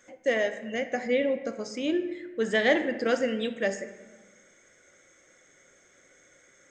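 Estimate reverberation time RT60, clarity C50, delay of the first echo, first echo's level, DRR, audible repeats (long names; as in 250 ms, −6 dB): 1.3 s, 10.0 dB, no echo audible, no echo audible, 8.0 dB, no echo audible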